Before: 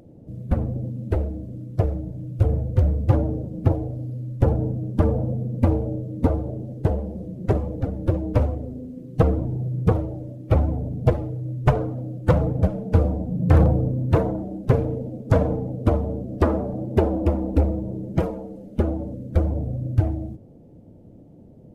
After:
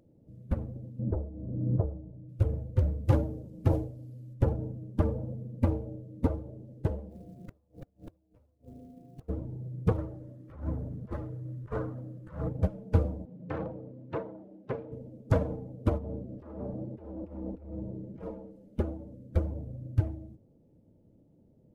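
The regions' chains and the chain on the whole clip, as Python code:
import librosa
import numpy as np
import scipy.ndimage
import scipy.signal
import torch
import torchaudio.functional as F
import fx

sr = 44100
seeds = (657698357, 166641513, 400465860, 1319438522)

y = fx.chain(x, sr, fx.lowpass(hz=1100.0, slope=24),
    fx.pre_swell(db_per_s=28.0), at=(0.99, 2.29))
y = fx.chain(y, sr, fx.high_shelf(hz=3000.0, db=8.5),
    fx.sustainer(db_per_s=65.0), at=(3.05, 4.34))
y = fx.dmg_tone(y, sr, hz=700.0, level_db=-42.0, at=(7.09, 9.28), fade=0.02)
y = fx.quant_float(y, sr, bits=4, at=(7.09, 9.28), fade=0.02)
y = fx.gate_flip(y, sr, shuts_db=-19.0, range_db=-31, at=(7.09, 9.28), fade=0.02)
y = fx.chain(y, sr, fx.over_compress(threshold_db=-22.0, ratio=-0.5),
    fx.band_shelf(hz=1400.0, db=8.5, octaves=1.1), at=(9.98, 12.49))
y = fx.chain(y, sr, fx.bandpass_edges(low_hz=130.0, high_hz=3100.0),
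    fx.low_shelf(hz=220.0, db=-10.0), at=(13.25, 14.92))
y = fx.chain(y, sr, fx.lowpass(hz=2900.0, slope=6),
    fx.over_compress(threshold_db=-27.0, ratio=-1.0), at=(15.98, 18.51))
y = fx.notch(y, sr, hz=720.0, q=12.0)
y = fx.upward_expand(y, sr, threshold_db=-29.0, expansion=1.5)
y = y * librosa.db_to_amplitude(-6.0)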